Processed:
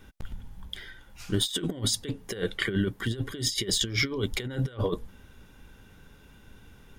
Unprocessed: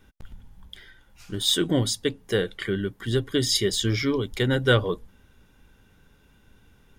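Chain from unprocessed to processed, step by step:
compressor whose output falls as the input rises −28 dBFS, ratio −0.5

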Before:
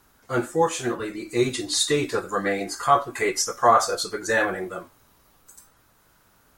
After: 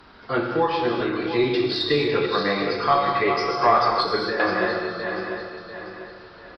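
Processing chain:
feedback delay that plays each chunk backwards 347 ms, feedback 50%, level −7.5 dB
downsampling to 11,025 Hz
0:03.90–0:04.40: compressor whose output falls as the input rises −25 dBFS, ratio −0.5
harmonic generator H 2 −22 dB, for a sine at −4.5 dBFS
reverb whose tail is shaped and stops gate 270 ms flat, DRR 2.5 dB
multiband upward and downward compressor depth 40%

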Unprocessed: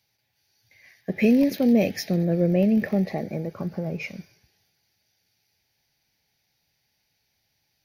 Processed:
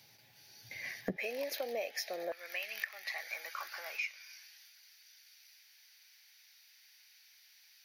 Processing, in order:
high-pass filter 110 Hz 24 dB per octave, from 0:01.17 600 Hz, from 0:02.32 1,300 Hz
downward compressor 8 to 1, threshold −47 dBFS, peak gain reduction 24 dB
level +11 dB

